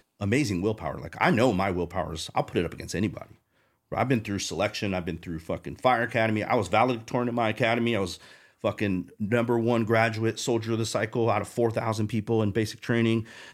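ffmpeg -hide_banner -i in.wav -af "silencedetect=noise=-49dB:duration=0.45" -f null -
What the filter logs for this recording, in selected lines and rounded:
silence_start: 3.34
silence_end: 3.92 | silence_duration: 0.57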